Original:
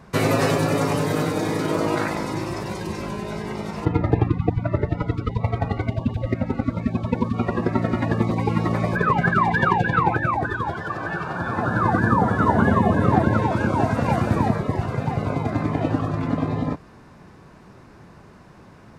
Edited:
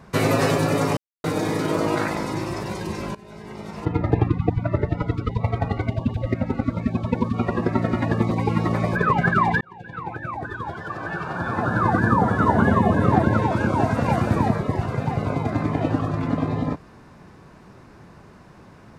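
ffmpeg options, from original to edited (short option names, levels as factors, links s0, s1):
-filter_complex "[0:a]asplit=5[s0][s1][s2][s3][s4];[s0]atrim=end=0.97,asetpts=PTS-STARTPTS,afade=t=out:st=0.966:d=0.004:c=hsin[s5];[s1]atrim=start=0.97:end=1.24,asetpts=PTS-STARTPTS,volume=0[s6];[s2]atrim=start=1.24:end=3.15,asetpts=PTS-STARTPTS,afade=t=in:d=0.004:c=hsin,afade=t=out:st=1.906:d=0.004:c=hsin:silence=0.125893[s7];[s3]atrim=start=3.15:end=9.61,asetpts=PTS-STARTPTS,afade=t=in:d=1.05:silence=0.125893,afade=t=out:st=6.456:d=0.004:c=hsin[s8];[s4]atrim=start=9.61,asetpts=PTS-STARTPTS,afade=t=in:d=1.83[s9];[s5][s6][s7][s8][s9]concat=n=5:v=0:a=1"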